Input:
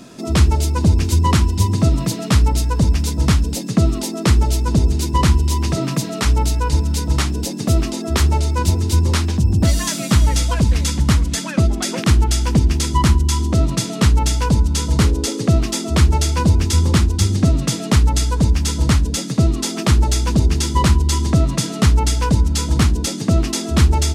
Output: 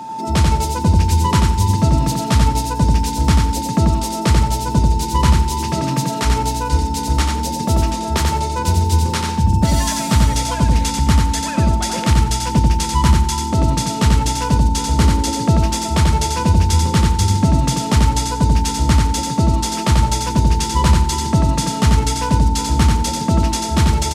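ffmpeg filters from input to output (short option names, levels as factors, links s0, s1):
-af "aeval=exprs='val(0)+0.0447*sin(2*PI*890*n/s)':c=same,aecho=1:1:90|180|270|360:0.668|0.167|0.0418|0.0104,volume=0.891"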